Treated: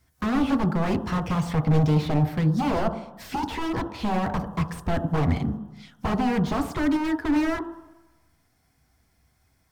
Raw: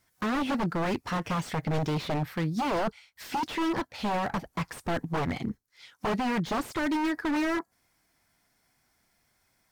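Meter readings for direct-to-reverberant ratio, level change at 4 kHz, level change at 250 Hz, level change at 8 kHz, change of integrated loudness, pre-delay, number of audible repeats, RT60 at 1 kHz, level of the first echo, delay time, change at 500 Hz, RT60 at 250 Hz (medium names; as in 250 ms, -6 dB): 5.0 dB, 0.0 dB, +6.0 dB, 0.0 dB, +5.0 dB, 3 ms, no echo, 1.1 s, no echo, no echo, +3.0 dB, 1.0 s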